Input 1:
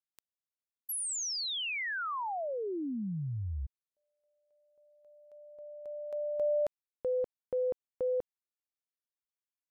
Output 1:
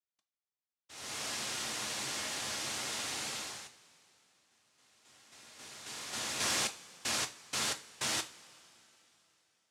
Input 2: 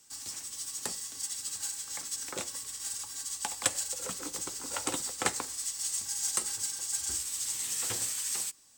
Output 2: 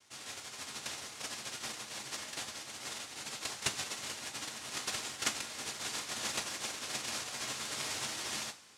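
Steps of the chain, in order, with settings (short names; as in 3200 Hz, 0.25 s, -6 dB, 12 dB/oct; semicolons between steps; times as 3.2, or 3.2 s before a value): noise vocoder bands 1; two-slope reverb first 0.28 s, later 3.5 s, from -22 dB, DRR 6 dB; gain -4 dB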